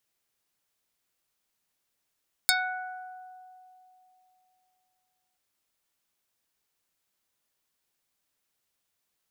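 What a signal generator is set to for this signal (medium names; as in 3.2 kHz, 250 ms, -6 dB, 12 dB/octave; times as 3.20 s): plucked string F#5, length 2.88 s, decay 3.14 s, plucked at 0.26, dark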